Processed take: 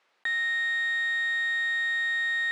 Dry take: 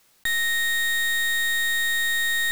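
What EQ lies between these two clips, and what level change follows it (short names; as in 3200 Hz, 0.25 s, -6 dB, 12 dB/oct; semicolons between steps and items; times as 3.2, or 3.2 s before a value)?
BPF 440–2500 Hz; -1.5 dB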